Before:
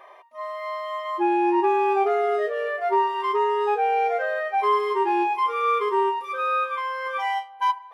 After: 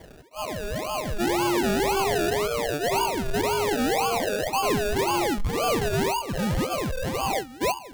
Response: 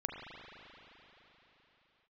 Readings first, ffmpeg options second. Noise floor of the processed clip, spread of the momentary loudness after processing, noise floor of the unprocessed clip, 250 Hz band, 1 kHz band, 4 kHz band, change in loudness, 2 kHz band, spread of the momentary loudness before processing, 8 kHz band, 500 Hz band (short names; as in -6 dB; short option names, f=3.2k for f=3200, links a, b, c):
-44 dBFS, 6 LU, -45 dBFS, +3.0 dB, -5.5 dB, +8.5 dB, -2.0 dB, -0.5 dB, 8 LU, n/a, -1.0 dB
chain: -af "acrusher=samples=33:mix=1:aa=0.000001:lfo=1:lforange=19.8:lforate=1.9,asoftclip=type=tanh:threshold=-22dB,volume=2dB"